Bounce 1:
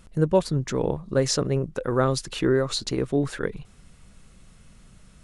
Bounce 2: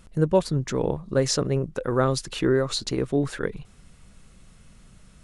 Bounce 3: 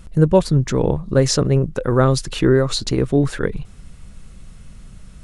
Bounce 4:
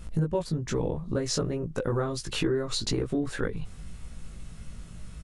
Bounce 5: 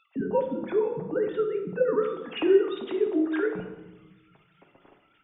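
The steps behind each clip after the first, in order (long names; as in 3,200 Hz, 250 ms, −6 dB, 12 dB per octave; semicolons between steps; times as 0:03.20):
no processing that can be heard
low-shelf EQ 150 Hz +8.5 dB; level +5 dB
downward compressor 6 to 1, threshold −23 dBFS, peak gain reduction 14.5 dB; double-tracking delay 18 ms −2 dB; level −3.5 dB
three sine waves on the formant tracks; on a send at −2.5 dB: convolution reverb RT60 1.2 s, pre-delay 7 ms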